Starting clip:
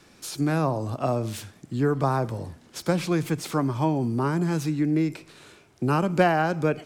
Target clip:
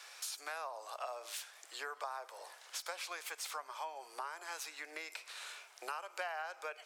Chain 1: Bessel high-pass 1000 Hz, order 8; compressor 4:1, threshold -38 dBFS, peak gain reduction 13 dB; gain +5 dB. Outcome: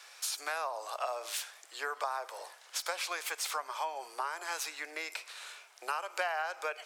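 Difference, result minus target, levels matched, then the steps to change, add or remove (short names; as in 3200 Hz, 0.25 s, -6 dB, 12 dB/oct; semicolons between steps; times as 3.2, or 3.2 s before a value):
compressor: peak gain reduction -7 dB
change: compressor 4:1, threshold -47.5 dBFS, peak gain reduction 20 dB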